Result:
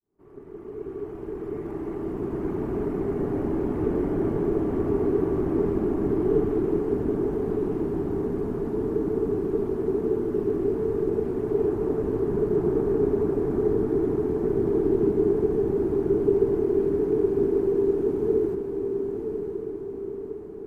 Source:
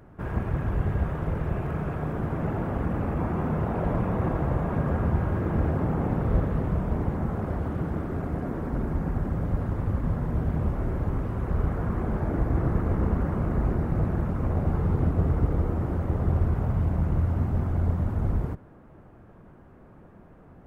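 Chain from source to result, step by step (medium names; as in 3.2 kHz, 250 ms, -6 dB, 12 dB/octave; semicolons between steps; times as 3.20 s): fade-in on the opening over 2.63 s; echo that smears into a reverb 1014 ms, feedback 51%, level -6 dB; frequency shift -480 Hz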